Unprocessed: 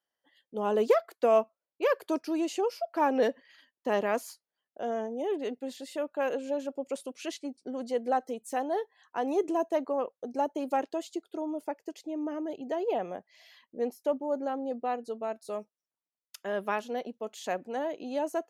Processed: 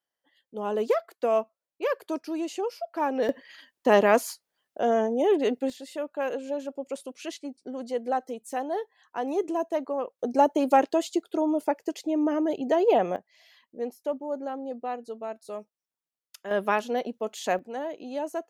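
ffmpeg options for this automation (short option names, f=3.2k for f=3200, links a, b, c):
-af "asetnsamples=n=441:p=0,asendcmd='3.29 volume volume 9dB;5.7 volume volume 0.5dB;10.19 volume volume 9dB;13.16 volume volume -1dB;16.51 volume volume 6dB;17.59 volume volume -0.5dB',volume=-1dB"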